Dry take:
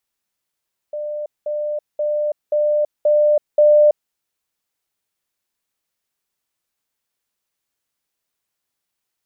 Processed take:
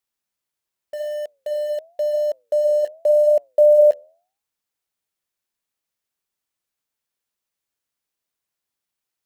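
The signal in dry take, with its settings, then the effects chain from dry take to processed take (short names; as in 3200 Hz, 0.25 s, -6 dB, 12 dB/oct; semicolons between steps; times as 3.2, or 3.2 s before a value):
level ladder 597 Hz -23 dBFS, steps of 3 dB, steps 6, 0.33 s 0.20 s
flange 0.88 Hz, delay 7.7 ms, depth 5.2 ms, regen -85%; in parallel at -4 dB: sample gate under -32 dBFS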